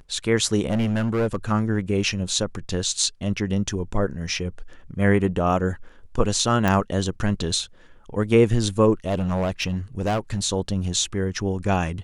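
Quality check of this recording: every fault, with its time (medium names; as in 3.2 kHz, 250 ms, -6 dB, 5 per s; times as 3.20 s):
0.69–1.52 s: clipped -18 dBFS
6.68 s: pop -9 dBFS
9.06–10.40 s: clipped -19 dBFS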